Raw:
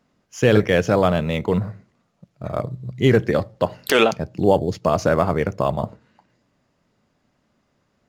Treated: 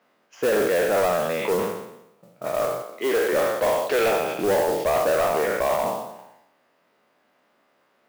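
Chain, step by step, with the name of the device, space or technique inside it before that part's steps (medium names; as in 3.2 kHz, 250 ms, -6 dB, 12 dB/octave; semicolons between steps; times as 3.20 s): spectral sustain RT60 0.84 s; de-esser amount 100%; 2.82–3.33 s: Bessel high-pass 370 Hz, order 6; carbon microphone (band-pass 460–3400 Hz; saturation -21 dBFS, distortion -10 dB; modulation noise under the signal 16 dB); trim +4.5 dB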